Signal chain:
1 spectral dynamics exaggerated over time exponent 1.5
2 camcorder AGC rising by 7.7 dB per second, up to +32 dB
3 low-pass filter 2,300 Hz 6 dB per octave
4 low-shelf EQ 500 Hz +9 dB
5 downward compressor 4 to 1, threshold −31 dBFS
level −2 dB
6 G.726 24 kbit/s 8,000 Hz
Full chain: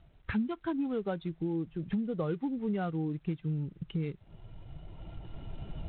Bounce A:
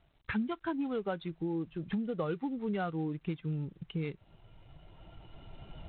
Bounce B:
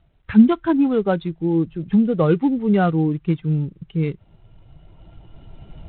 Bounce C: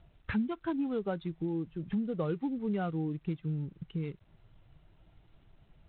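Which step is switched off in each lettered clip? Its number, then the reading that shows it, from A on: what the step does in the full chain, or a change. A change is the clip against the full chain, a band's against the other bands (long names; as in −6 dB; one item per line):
4, 125 Hz band −4.5 dB
5, average gain reduction 10.5 dB
2, change in momentary loudness spread −11 LU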